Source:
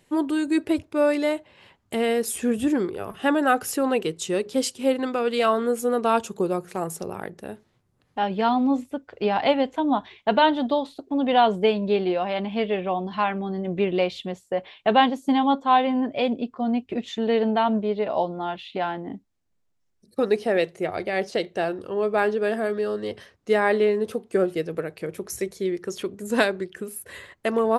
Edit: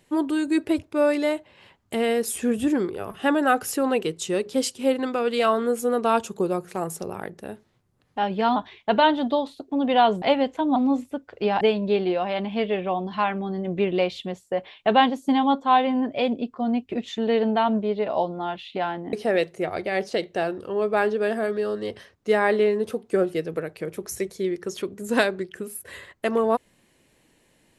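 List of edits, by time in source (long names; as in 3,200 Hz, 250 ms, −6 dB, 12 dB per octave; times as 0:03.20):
0:08.56–0:09.41: swap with 0:09.95–0:11.61
0:19.13–0:20.34: remove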